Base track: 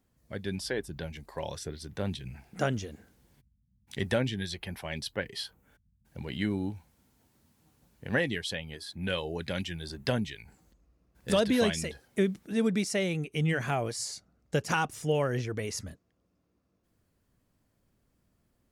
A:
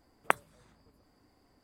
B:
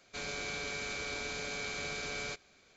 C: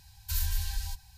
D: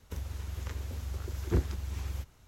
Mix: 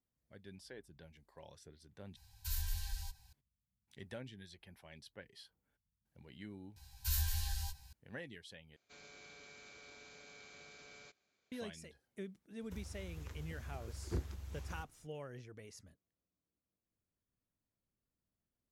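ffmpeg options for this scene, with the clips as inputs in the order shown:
-filter_complex "[3:a]asplit=2[a][b];[0:a]volume=-19.5dB[c];[b]asplit=2[d][e];[e]adelay=15,volume=-3dB[f];[d][f]amix=inputs=2:normalize=0[g];[2:a]highpass=f=87:p=1[h];[c]asplit=3[i][j][k];[i]atrim=end=2.164[l];[a]atrim=end=1.17,asetpts=PTS-STARTPTS,volume=-8.5dB[m];[j]atrim=start=3.326:end=8.764[n];[h]atrim=end=2.76,asetpts=PTS-STARTPTS,volume=-18dB[o];[k]atrim=start=11.516[p];[g]atrim=end=1.17,asetpts=PTS-STARTPTS,volume=-5.5dB,afade=t=in:d=0.004:c=hsin,afade=t=out:st=1.166:d=0.004:c=hsin,adelay=6760[q];[4:a]atrim=end=2.47,asetpts=PTS-STARTPTS,volume=-10.5dB,afade=t=in:d=0.004:c=hsin,afade=t=out:st=2.466:d=0.004:c=hsin,adelay=12600[r];[l][m]acrossfade=d=0.004:c1=hsin:c2=hsin[s];[s][n]acrossfade=d=0.004:c1=hsin:c2=hsin[t];[t][o]acrossfade=d=0.004:c1=hsin:c2=hsin[u];[u][p]acrossfade=d=0.004:c1=hsin:c2=hsin[v];[v][q][r]amix=inputs=3:normalize=0"

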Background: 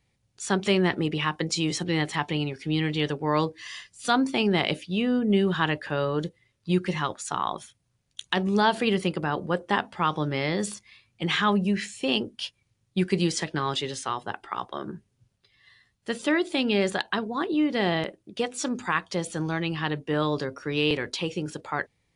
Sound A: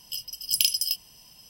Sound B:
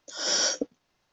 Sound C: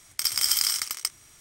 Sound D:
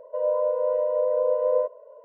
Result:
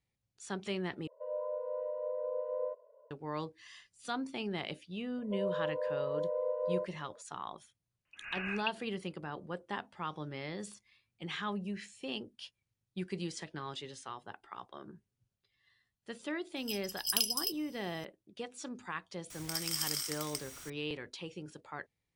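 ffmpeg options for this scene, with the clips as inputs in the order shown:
-filter_complex "[4:a]asplit=2[a][b];[0:a]volume=-14.5dB[c];[2:a]lowpass=f=2.6k:t=q:w=0.5098,lowpass=f=2.6k:t=q:w=0.6013,lowpass=f=2.6k:t=q:w=0.9,lowpass=f=2.6k:t=q:w=2.563,afreqshift=-3100[d];[3:a]aeval=exprs='val(0)+0.5*0.0237*sgn(val(0))':c=same[e];[c]asplit=2[f][g];[f]atrim=end=1.074[h];[a]atrim=end=2.04,asetpts=PTS-STARTPTS,volume=-14dB[i];[g]atrim=start=3.106[j];[b]atrim=end=2.04,asetpts=PTS-STARTPTS,volume=-11.5dB,afade=t=in:d=0.004:c=hsin,afade=t=out:st=2.036:d=0.004:c=hsin,adelay=5180[k];[d]atrim=end=1.12,asetpts=PTS-STARTPTS,volume=-7dB,afade=t=in:d=0.004:c=hsin,afade=t=out:st=1.116:d=0.004:c=hsin,adelay=8050[l];[1:a]atrim=end=1.49,asetpts=PTS-STARTPTS,volume=-8dB,afade=t=in:d=0.004:c=hsin,afade=t=out:st=1.486:d=0.004:c=hsin,adelay=16560[m];[e]atrim=end=1.4,asetpts=PTS-STARTPTS,volume=-13dB,afade=t=in:d=0.004:c=hsin,afade=t=out:st=1.396:d=0.004:c=hsin,adelay=19300[n];[h][i]acrossfade=d=0.004:c1=hsin:c2=hsin[o];[o][j]acrossfade=d=0.004:c1=hsin:c2=hsin[p];[p][k][l][m][n]amix=inputs=5:normalize=0"

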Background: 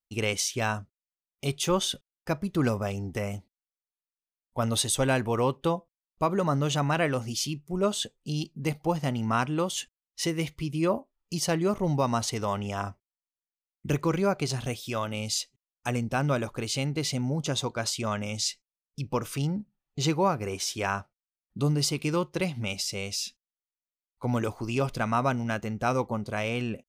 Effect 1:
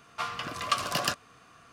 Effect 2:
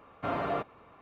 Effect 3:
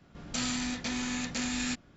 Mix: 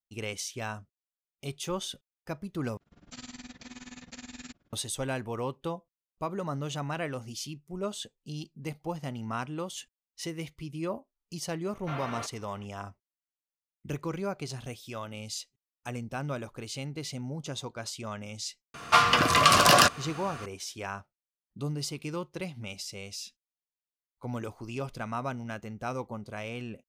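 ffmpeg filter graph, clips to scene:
-filter_complex "[0:a]volume=-8dB[a];[3:a]tremolo=f=19:d=0.9[b];[2:a]tiltshelf=f=1.1k:g=-8[c];[1:a]alimiter=level_in=18.5dB:limit=-1dB:release=50:level=0:latency=1[d];[a]asplit=2[e][f];[e]atrim=end=2.774[g];[b]atrim=end=1.96,asetpts=PTS-STARTPTS,volume=-9dB[h];[f]atrim=start=4.726[i];[c]atrim=end=1.01,asetpts=PTS-STARTPTS,volume=-4.5dB,afade=t=in:d=0.004:c=hsin,afade=t=out:st=1.006:d=0.004:c=hsin,adelay=11640[j];[d]atrim=end=1.72,asetpts=PTS-STARTPTS,volume=-5dB,afade=t=in:d=0.004:c=hsin,afade=t=out:st=1.716:d=0.004:c=hsin,adelay=18740[k];[g][h]acrossfade=d=0.004:c1=hsin:c2=hsin[l];[l][i]acrossfade=d=0.004:c1=hsin:c2=hsin[m];[m][j][k]amix=inputs=3:normalize=0"

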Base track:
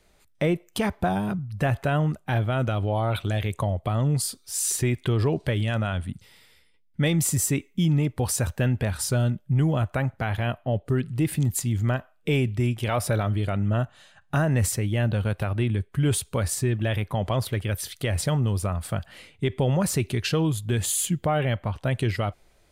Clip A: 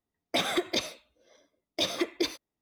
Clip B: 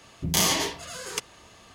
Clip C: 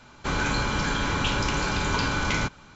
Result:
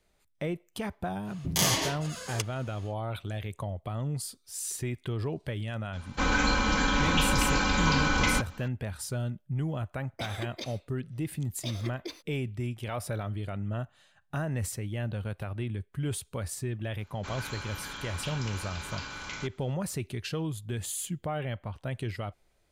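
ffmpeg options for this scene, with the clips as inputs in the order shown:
-filter_complex "[3:a]asplit=2[a][b];[0:a]volume=-9.5dB[c];[a]aecho=1:1:3.9:0.76[d];[b]tiltshelf=f=910:g=-5[e];[2:a]atrim=end=1.74,asetpts=PTS-STARTPTS,volume=-3.5dB,afade=t=in:d=0.1,afade=t=out:st=1.64:d=0.1,adelay=1220[f];[d]atrim=end=2.75,asetpts=PTS-STARTPTS,volume=-2dB,afade=t=in:d=0.004:c=hsin,afade=t=out:st=2.746:d=0.004:c=hsin,adelay=261513S[g];[1:a]atrim=end=2.61,asetpts=PTS-STARTPTS,volume=-11dB,afade=t=in:d=0.004:c=hsin,afade=t=out:st=2.606:d=0.004:c=hsin,adelay=9850[h];[e]atrim=end=2.75,asetpts=PTS-STARTPTS,volume=-15dB,afade=t=in:d=0.004:c=hsin,afade=t=out:st=2.746:d=0.004:c=hsin,adelay=16990[i];[c][f][g][h][i]amix=inputs=5:normalize=0"

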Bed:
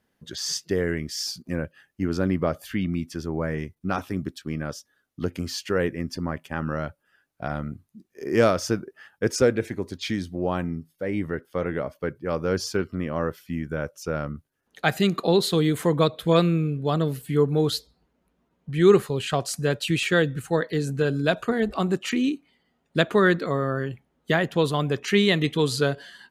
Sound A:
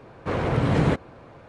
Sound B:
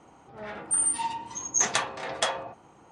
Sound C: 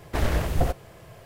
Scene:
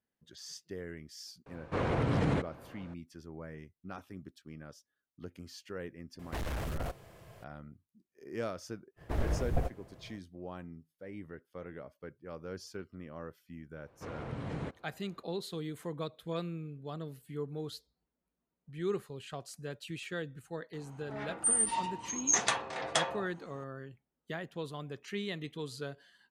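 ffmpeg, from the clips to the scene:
-filter_complex "[1:a]asplit=2[a][b];[3:a]asplit=2[c][d];[0:a]volume=-18dB[e];[a]alimiter=limit=-14.5dB:level=0:latency=1:release=75[f];[c]volume=26dB,asoftclip=hard,volume=-26dB[g];[d]tiltshelf=f=1.4k:g=5[h];[f]atrim=end=1.48,asetpts=PTS-STARTPTS,volume=-6dB,afade=t=in:d=0.004:c=hsin,afade=t=out:st=1.476:d=0.004:c=hsin,adelay=1460[i];[g]atrim=end=1.25,asetpts=PTS-STARTPTS,volume=-7.5dB,afade=t=in:d=0.004:c=hsin,afade=t=out:st=1.246:d=0.004:c=hsin,adelay=6190[j];[h]atrim=end=1.25,asetpts=PTS-STARTPTS,volume=-12.5dB,afade=t=in:d=0.05,afade=t=out:st=1.2:d=0.05,adelay=8960[k];[b]atrim=end=1.48,asetpts=PTS-STARTPTS,volume=-18dB,afade=t=in:d=0.004:c=hsin,afade=t=out:st=1.476:d=0.004:c=hsin,adelay=13750[l];[2:a]atrim=end=2.91,asetpts=PTS-STARTPTS,volume=-3.5dB,afade=t=in:d=0.004:c=hsin,afade=t=out:st=2.906:d=0.004:c=hsin,adelay=20730[m];[e][i][j][k][l][m]amix=inputs=6:normalize=0"

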